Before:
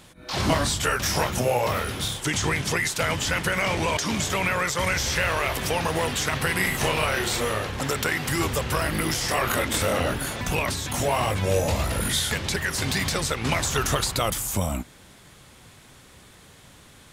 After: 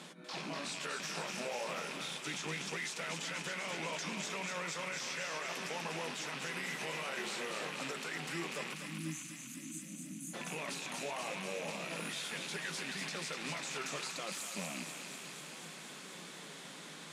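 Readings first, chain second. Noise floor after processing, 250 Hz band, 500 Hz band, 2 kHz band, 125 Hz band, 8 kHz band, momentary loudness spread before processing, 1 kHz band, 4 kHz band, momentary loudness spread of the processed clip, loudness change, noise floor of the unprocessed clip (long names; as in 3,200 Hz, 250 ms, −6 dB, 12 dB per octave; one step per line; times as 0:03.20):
−50 dBFS, −15.0 dB, −16.5 dB, −13.5 dB, −21.5 dB, −14.5 dB, 4 LU, −16.0 dB, −13.0 dB, 8 LU, −15.5 dB, −51 dBFS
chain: loose part that buzzes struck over −29 dBFS, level −17 dBFS
reversed playback
downward compressor 8 to 1, threshold −37 dBFS, peak gain reduction 20 dB
reversed playback
low-pass filter 8,300 Hz 12 dB per octave
flanger 0.69 Hz, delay 4.5 ms, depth 3.4 ms, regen +76%
elliptic high-pass filter 160 Hz, stop band 40 dB
gain on a spectral selection 0:08.74–0:10.34, 330–5,900 Hz −30 dB
brickwall limiter −37 dBFS, peak gain reduction 6.5 dB
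on a send: feedback echo with a high-pass in the loop 244 ms, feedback 79%, high-pass 1,100 Hz, level −4.5 dB
on the sum: level +6 dB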